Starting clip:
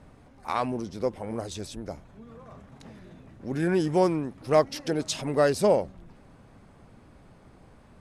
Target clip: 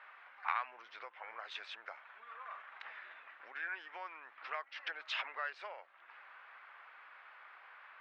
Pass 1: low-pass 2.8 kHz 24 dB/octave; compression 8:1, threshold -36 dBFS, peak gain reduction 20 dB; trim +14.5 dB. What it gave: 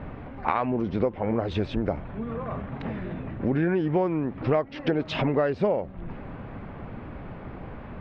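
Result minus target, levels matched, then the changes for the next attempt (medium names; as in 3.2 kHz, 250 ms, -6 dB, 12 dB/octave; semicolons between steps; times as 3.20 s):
1 kHz band -5.0 dB
add after compression: ladder high-pass 1.1 kHz, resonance 30%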